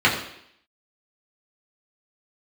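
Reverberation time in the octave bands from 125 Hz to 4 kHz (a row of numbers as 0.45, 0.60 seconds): 0.60, 0.70, 0.70, 0.70, 0.75, 0.75 seconds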